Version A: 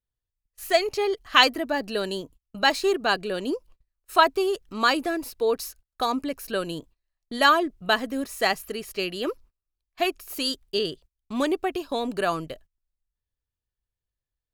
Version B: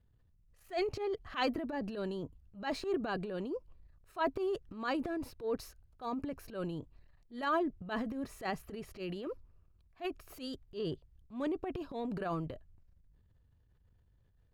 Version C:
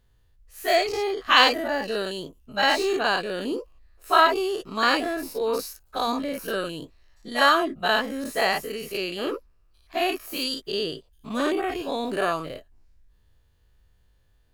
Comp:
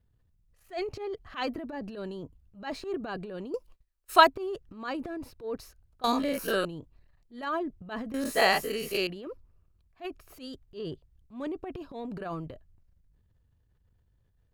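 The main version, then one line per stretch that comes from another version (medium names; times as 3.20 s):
B
3.54–4.27 s: from A
6.04–6.65 s: from C
8.14–9.07 s: from C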